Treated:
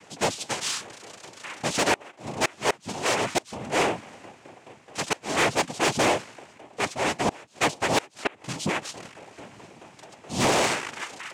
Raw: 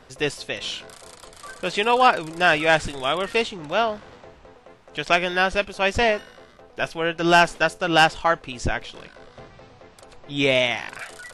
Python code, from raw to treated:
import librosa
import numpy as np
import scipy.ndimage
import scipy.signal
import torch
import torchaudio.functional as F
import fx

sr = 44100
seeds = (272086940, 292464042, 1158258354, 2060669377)

y = fx.noise_vocoder(x, sr, seeds[0], bands=4)
y = fx.gate_flip(y, sr, shuts_db=-7.0, range_db=-32)
y = 10.0 ** (-16.0 / 20.0) * np.tanh(y / 10.0 ** (-16.0 / 20.0))
y = y * librosa.db_to_amplitude(1.0)